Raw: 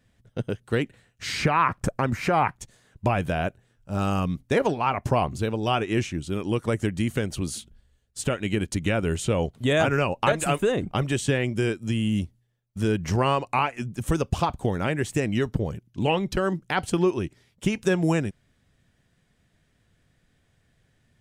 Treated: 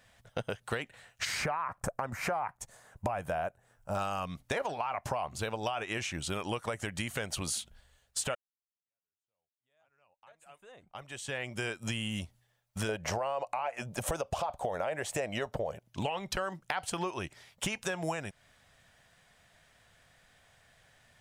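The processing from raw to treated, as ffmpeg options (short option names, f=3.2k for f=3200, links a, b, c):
-filter_complex "[0:a]asettb=1/sr,asplit=3[a][b][c];[a]atrim=end=1.254[d];[b]atrim=start=1.25:end=3.95,asetpts=PTS-STARTPTS,afade=t=in:d=0.004:c=qsin,afade=t=out:st=2.696:d=0.004:c=qsin,equalizer=f=3.4k:t=o:w=1.8:g=-11[e];[c]atrim=start=3.946[f];[d][e]acrossfade=d=0.004:c1=hsin:c2=qsin[g];[g][f]acrossfade=d=0.004:c1=qsin:c2=hsin,asettb=1/sr,asplit=3[h][i][j];[h]atrim=end=12.894[k];[i]atrim=start=12.89:end=15.89,asetpts=PTS-STARTPTS,afade=t=in:d=0.004:c=qsin,afade=t=out:st=2.996:d=0.004:c=qsin,equalizer=f=590:t=o:w=0.98:g=12.5[l];[j]atrim=start=15.886[m];[k][l]acrossfade=d=0.004:c1=hsin:c2=qsin[n];[n][m]acrossfade=d=0.004:c1=qsin:c2=hsin,asplit=2[o][p];[o]atrim=end=8.35,asetpts=PTS-STARTPTS,afade=t=out:st=8.346:d=0.004:c=hsin[q];[p]atrim=start=8.35,asetpts=PTS-STARTPTS,afade=t=in:d=3.49:c=exp[r];[q][r]concat=n=2:v=0:a=1,lowshelf=f=480:t=q:w=1.5:g=-11,alimiter=limit=-18dB:level=0:latency=1:release=42,acompressor=threshold=-39dB:ratio=6,volume=7.5dB"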